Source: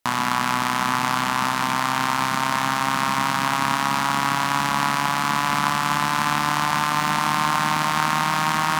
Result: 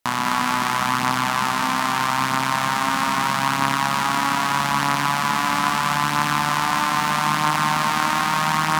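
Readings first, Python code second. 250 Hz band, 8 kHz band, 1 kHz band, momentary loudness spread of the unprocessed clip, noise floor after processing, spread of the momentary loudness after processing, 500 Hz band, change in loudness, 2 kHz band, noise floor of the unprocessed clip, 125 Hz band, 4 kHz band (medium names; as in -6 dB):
+1.0 dB, +1.0 dB, +1.0 dB, 1 LU, -23 dBFS, 1 LU, +1.0 dB, +1.0 dB, +1.0 dB, -24 dBFS, +1.0 dB, +1.0 dB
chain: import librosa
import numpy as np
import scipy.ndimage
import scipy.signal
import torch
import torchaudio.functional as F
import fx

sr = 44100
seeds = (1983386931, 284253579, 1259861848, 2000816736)

y = x + 10.0 ** (-6.0 / 20.0) * np.pad(x, (int(205 * sr / 1000.0), 0))[:len(x)]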